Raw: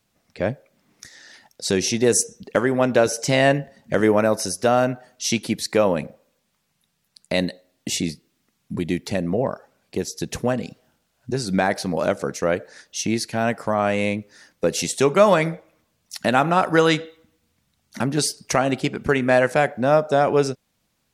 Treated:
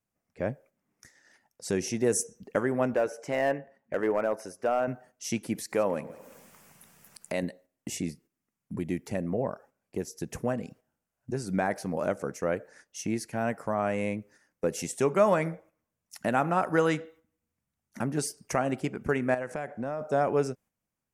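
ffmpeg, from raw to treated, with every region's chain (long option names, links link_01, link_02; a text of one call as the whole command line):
ffmpeg -i in.wav -filter_complex "[0:a]asettb=1/sr,asplit=3[link_01][link_02][link_03];[link_01]atrim=end=2.944[link_04];[link_02]atrim=start=2.94:end=4.88,asetpts=PTS-STARTPTS,afade=type=in:duration=0.004:curve=qsin,afade=type=out:start_time=1.936:duration=0.004:curve=qsin,bass=frequency=250:gain=-12,treble=frequency=4000:gain=-13,asoftclip=type=hard:threshold=-11.5dB[link_05];[link_03]atrim=start=4.876[link_06];[link_04][link_05]acrossfade=duration=0.004:curve1=hsin:curve2=qsin[link_07];[link_07][link_06]acrossfade=duration=0.004:curve1=qsin:curve2=hsin,asettb=1/sr,asplit=3[link_08][link_09][link_10];[link_08]atrim=end=5.554[link_11];[link_09]atrim=start=5.55:end=7.43,asetpts=PTS-STARTPTS,afade=type=in:duration=0.004:curve=qsin,afade=type=out:start_time=1.876:duration=0.004:curve=qsin,acompressor=mode=upward:threshold=-21dB:ratio=2.5:attack=3.2:release=140:knee=2.83:detection=peak,lowshelf=frequency=160:gain=-9.5,aecho=1:1:172|344|516:0.112|0.0482|0.0207,atrim=end_sample=82908[link_12];[link_10]atrim=start=7.426[link_13];[link_11][link_12]acrossfade=duration=0.004:curve1=hsin:curve2=qsin[link_14];[link_14][link_13]acrossfade=duration=0.004:curve1=qsin:curve2=hsin,asettb=1/sr,asplit=3[link_15][link_16][link_17];[link_15]atrim=end=19.344[link_18];[link_16]atrim=start=19.34:end=20.01,asetpts=PTS-STARTPTS,afade=type=in:duration=0.004:curve=qsin,afade=type=out:start_time=0.666:duration=0.004:curve=qsin,lowpass=10000,acompressor=threshold=-21dB:ratio=12:attack=3.2:release=140:knee=1:detection=peak[link_19];[link_17]atrim=start=20.006[link_20];[link_18][link_19]acrossfade=duration=0.004:curve1=hsin:curve2=qsin[link_21];[link_21][link_20]acrossfade=duration=0.004:curve1=qsin:curve2=hsin,agate=range=-8dB:threshold=-45dB:ratio=16:detection=peak,equalizer=frequency=3900:width_type=o:width=0.82:gain=-13.5,volume=-7.5dB" out.wav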